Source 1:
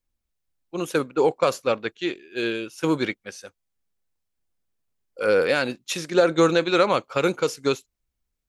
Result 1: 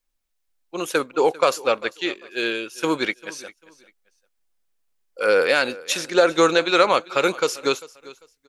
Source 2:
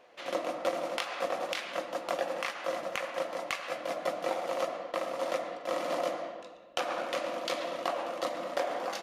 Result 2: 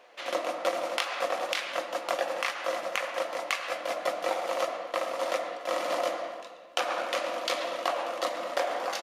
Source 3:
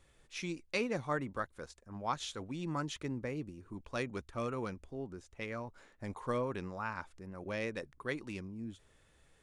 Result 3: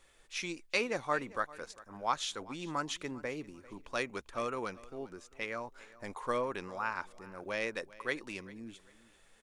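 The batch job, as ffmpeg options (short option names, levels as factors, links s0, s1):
-af "equalizer=f=97:w=0.4:g=-14.5,aecho=1:1:396|792:0.1|0.026,volume=1.78"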